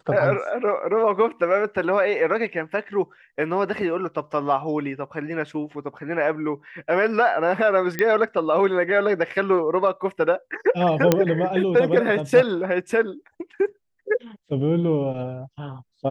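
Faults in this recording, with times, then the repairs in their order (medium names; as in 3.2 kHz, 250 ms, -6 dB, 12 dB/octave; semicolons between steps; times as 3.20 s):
7.99 s: pop -10 dBFS
11.12 s: pop -2 dBFS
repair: de-click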